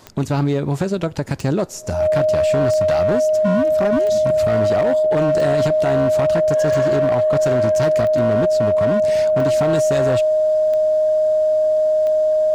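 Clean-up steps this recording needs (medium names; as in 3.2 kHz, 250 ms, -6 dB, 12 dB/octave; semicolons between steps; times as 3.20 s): clip repair -12.5 dBFS; de-click; band-stop 620 Hz, Q 30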